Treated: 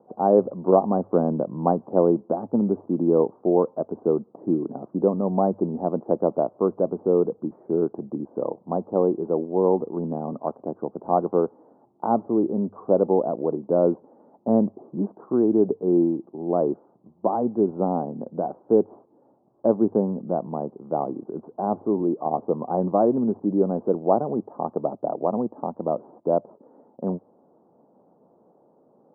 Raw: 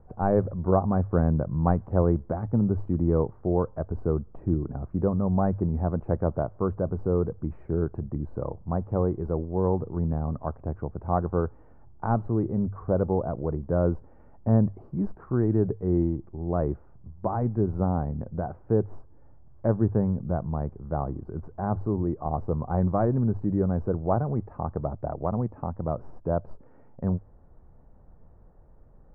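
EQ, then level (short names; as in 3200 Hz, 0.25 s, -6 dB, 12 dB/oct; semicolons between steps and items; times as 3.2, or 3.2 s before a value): HPF 230 Hz 24 dB/oct; LPF 1000 Hz 24 dB/oct; air absorption 280 m; +7.5 dB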